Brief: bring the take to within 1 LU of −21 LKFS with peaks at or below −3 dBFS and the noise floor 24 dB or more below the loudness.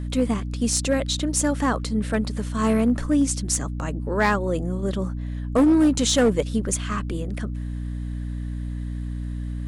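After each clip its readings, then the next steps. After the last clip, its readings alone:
share of clipped samples 0.6%; peaks flattened at −12.5 dBFS; mains hum 60 Hz; hum harmonics up to 300 Hz; level of the hum −27 dBFS; integrated loudness −24.0 LKFS; sample peak −12.5 dBFS; target loudness −21.0 LKFS
→ clipped peaks rebuilt −12.5 dBFS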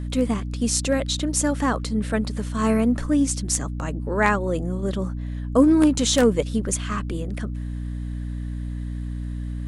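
share of clipped samples 0.0%; mains hum 60 Hz; hum harmonics up to 300 Hz; level of the hum −26 dBFS
→ mains-hum notches 60/120/180/240/300 Hz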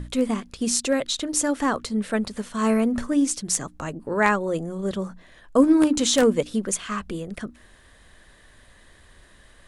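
mains hum none found; integrated loudness −23.5 LKFS; sample peak −4.0 dBFS; target loudness −21.0 LKFS
→ level +2.5 dB
brickwall limiter −3 dBFS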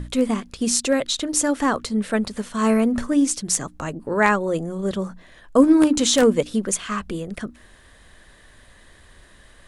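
integrated loudness −21.0 LKFS; sample peak −3.0 dBFS; background noise floor −51 dBFS

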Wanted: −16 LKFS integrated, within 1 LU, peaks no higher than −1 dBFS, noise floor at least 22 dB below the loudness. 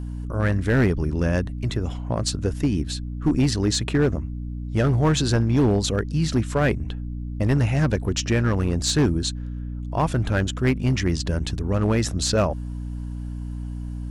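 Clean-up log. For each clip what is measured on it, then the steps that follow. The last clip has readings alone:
share of clipped samples 1.4%; peaks flattened at −13.5 dBFS; mains hum 60 Hz; hum harmonics up to 300 Hz; level of the hum −28 dBFS; integrated loudness −23.5 LKFS; sample peak −13.5 dBFS; target loudness −16.0 LKFS
→ clipped peaks rebuilt −13.5 dBFS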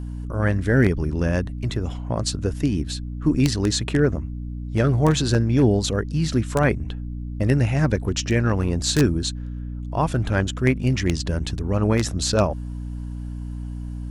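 share of clipped samples 0.0%; mains hum 60 Hz; hum harmonics up to 300 Hz; level of the hum −28 dBFS
→ hum removal 60 Hz, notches 5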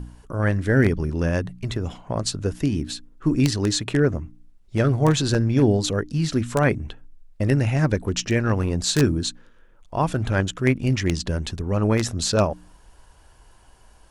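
mains hum none found; integrated loudness −22.5 LKFS; sample peak −4.5 dBFS; target loudness −16.0 LKFS
→ level +6.5 dB
brickwall limiter −1 dBFS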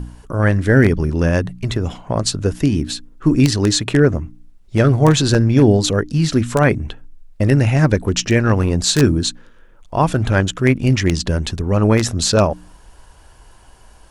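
integrated loudness −16.5 LKFS; sample peak −1.0 dBFS; background noise floor −46 dBFS

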